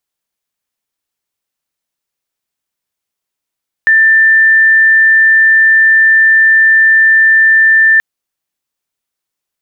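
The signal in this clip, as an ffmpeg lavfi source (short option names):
-f lavfi -i "sine=f=1780:d=4.13:r=44100,volume=14.06dB"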